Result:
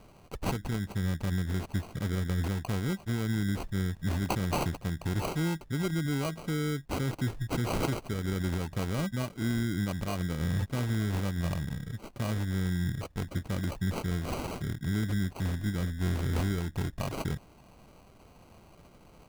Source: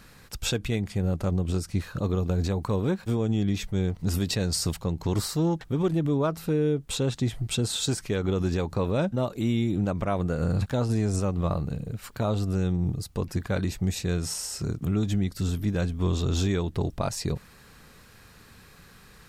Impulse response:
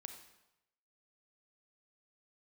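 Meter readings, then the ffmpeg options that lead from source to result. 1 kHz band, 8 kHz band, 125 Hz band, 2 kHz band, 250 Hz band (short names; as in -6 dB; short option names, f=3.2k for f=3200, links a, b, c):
-2.5 dB, -9.5 dB, -4.0 dB, +0.5 dB, -5.0 dB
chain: -af "equalizer=f=500:t=o:w=1:g=-8,equalizer=f=2k:t=o:w=1:g=-9,equalizer=f=4k:t=o:w=1:g=8,acrusher=samples=25:mix=1:aa=0.000001,volume=-3.5dB"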